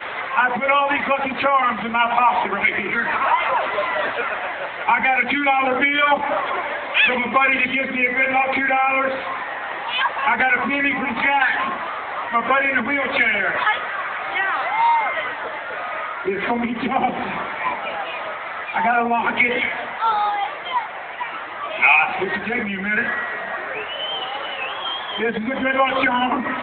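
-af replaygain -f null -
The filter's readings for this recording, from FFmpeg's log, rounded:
track_gain = -0.1 dB
track_peak = 0.555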